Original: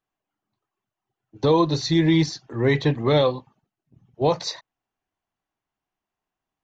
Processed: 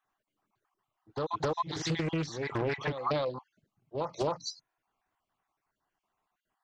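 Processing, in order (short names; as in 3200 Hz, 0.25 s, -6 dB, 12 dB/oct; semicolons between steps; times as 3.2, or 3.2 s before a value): random spectral dropouts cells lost 39%; bell 1200 Hz +8.5 dB 1.7 oct; pre-echo 0.266 s -14.5 dB; compressor 8:1, threshold -28 dBFS, peak gain reduction 16 dB; spectral repair 4.39–4.73, 310–4000 Hz after; Doppler distortion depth 0.71 ms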